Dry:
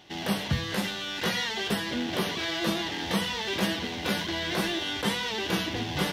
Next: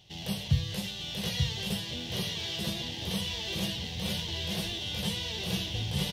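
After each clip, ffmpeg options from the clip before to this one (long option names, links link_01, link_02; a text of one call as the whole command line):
ffmpeg -i in.wav -af "firequalizer=gain_entry='entry(130,0);entry(270,-20);entry(470,-12);entry(1400,-23);entry(2900,-7)':delay=0.05:min_phase=1,aecho=1:1:885:0.631,volume=4dB" out.wav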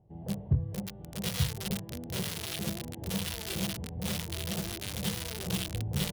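ffmpeg -i in.wav -filter_complex "[0:a]acrossover=split=870[link_01][link_02];[link_02]acrusher=bits=4:mix=0:aa=0.000001[link_03];[link_01][link_03]amix=inputs=2:normalize=0,asoftclip=type=hard:threshold=-17.5dB" out.wav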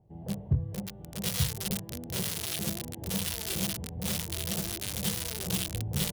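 ffmpeg -i in.wav -af "adynamicequalizer=threshold=0.00355:dfrequency=4900:dqfactor=0.7:tfrequency=4900:tqfactor=0.7:attack=5:release=100:ratio=0.375:range=3:mode=boostabove:tftype=highshelf" out.wav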